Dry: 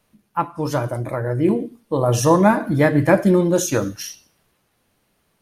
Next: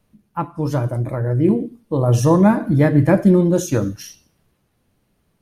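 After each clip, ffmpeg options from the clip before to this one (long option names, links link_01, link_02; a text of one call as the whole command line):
ffmpeg -i in.wav -af "lowshelf=frequency=360:gain=11.5,volume=-5dB" out.wav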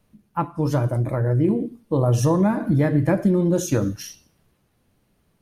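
ffmpeg -i in.wav -af "acompressor=threshold=-15dB:ratio=6" out.wav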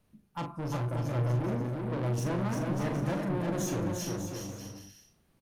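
ffmpeg -i in.wav -filter_complex "[0:a]asoftclip=type=tanh:threshold=-25.5dB,asplit=2[link_01][link_02];[link_02]adelay=41,volume=-7.5dB[link_03];[link_01][link_03]amix=inputs=2:normalize=0,asplit=2[link_04][link_05];[link_05]aecho=0:1:350|595|766.5|886.6|970.6:0.631|0.398|0.251|0.158|0.1[link_06];[link_04][link_06]amix=inputs=2:normalize=0,volume=-6dB" out.wav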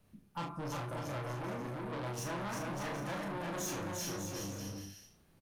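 ffmpeg -i in.wav -filter_complex "[0:a]asplit=2[link_01][link_02];[link_02]adelay=30,volume=-5dB[link_03];[link_01][link_03]amix=inputs=2:normalize=0,acrossover=split=690|2900[link_04][link_05][link_06];[link_04]acompressor=threshold=-39dB:ratio=6[link_07];[link_07][link_05][link_06]amix=inputs=3:normalize=0,asoftclip=type=tanh:threshold=-34dB,volume=1dB" out.wav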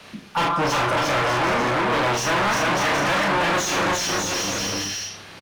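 ffmpeg -i in.wav -filter_complex "[0:a]acrossover=split=110|5800[link_01][link_02][link_03];[link_01]aecho=1:1:172|344|516|688|860|1032:0.237|0.135|0.077|0.0439|0.025|0.0143[link_04];[link_02]crystalizer=i=8:c=0[link_05];[link_04][link_05][link_03]amix=inputs=3:normalize=0,asplit=2[link_06][link_07];[link_07]highpass=frequency=720:poles=1,volume=27dB,asoftclip=type=tanh:threshold=-20.5dB[link_08];[link_06][link_08]amix=inputs=2:normalize=0,lowpass=frequency=1900:poles=1,volume=-6dB,volume=8.5dB" out.wav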